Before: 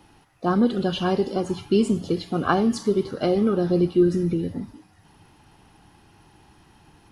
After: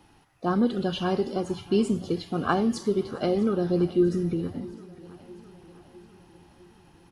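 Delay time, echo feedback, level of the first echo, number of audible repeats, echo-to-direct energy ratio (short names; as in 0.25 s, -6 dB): 0.655 s, 58%, -20.0 dB, 4, -18.0 dB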